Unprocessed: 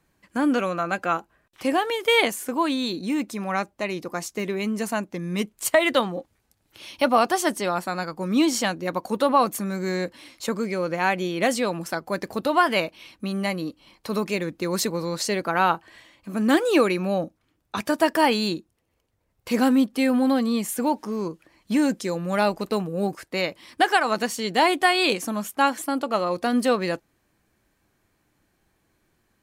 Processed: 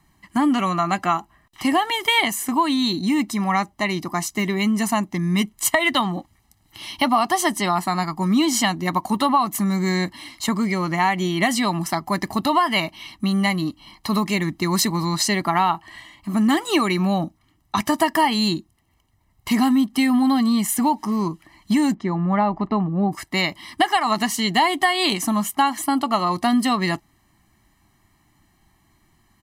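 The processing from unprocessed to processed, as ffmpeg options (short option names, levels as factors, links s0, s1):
-filter_complex "[0:a]asettb=1/sr,asplit=3[s0][s1][s2];[s0]atrim=end=21.944[s3];[s1]atrim=start=21.94:end=23.12,asetpts=PTS-STARTPTS,afade=t=in:d=0.004:c=qsin,afade=t=out:st=1.176:d=0.004:c=qsin,lowpass=1500[s4];[s2]atrim=start=23.116[s5];[s3][s4]acrossfade=d=0.004:c1=hsin:c2=qsin[s6];[s6][s5]acrossfade=d=0.004:c1=qsin:c2=hsin,aecho=1:1:1:0.96,acompressor=threshold=0.1:ratio=4,volume=1.68"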